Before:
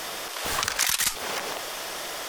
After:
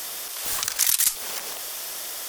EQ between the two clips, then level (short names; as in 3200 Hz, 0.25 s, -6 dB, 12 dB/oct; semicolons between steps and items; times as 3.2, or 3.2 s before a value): high shelf 3700 Hz +11 dB; high shelf 9200 Hz +8 dB; -8.0 dB